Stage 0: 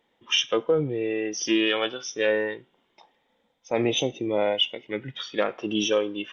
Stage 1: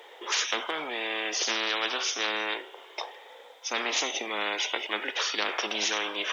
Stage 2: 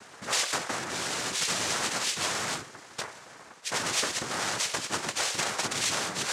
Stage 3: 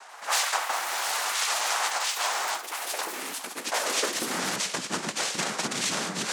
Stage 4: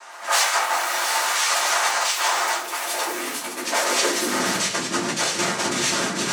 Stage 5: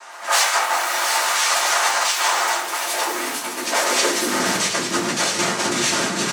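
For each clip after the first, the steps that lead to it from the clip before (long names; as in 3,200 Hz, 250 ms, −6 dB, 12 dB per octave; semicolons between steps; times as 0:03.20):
elliptic high-pass filter 400 Hz, stop band 70 dB; every bin compressed towards the loudest bin 10 to 1
cochlear-implant simulation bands 3
high-pass filter sweep 800 Hz → 190 Hz, 0:03.64–0:04.41; delay with pitch and tempo change per echo 88 ms, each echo +6 semitones, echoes 3, each echo −6 dB
rectangular room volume 120 cubic metres, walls furnished, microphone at 2.8 metres
repeating echo 732 ms, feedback 41%, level −12 dB; level +2 dB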